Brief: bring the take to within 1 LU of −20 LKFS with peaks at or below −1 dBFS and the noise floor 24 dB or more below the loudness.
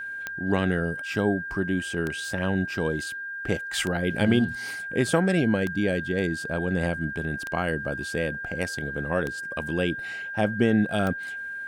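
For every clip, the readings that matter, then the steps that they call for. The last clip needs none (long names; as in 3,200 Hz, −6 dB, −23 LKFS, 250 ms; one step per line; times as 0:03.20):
number of clicks 7; interfering tone 1,600 Hz; level of the tone −32 dBFS; integrated loudness −26.5 LKFS; sample peak −7.5 dBFS; target loudness −20.0 LKFS
→ click removal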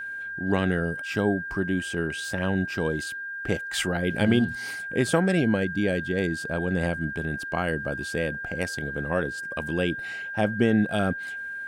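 number of clicks 0; interfering tone 1,600 Hz; level of the tone −32 dBFS
→ notch filter 1,600 Hz, Q 30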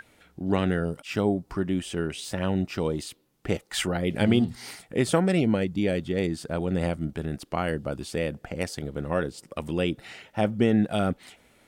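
interfering tone none found; integrated loudness −27.5 LKFS; sample peak −7.0 dBFS; target loudness −20.0 LKFS
→ level +7.5 dB
brickwall limiter −1 dBFS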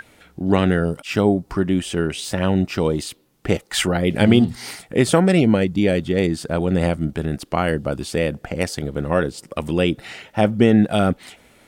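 integrated loudness −20.0 LKFS; sample peak −1.0 dBFS; background noise floor −55 dBFS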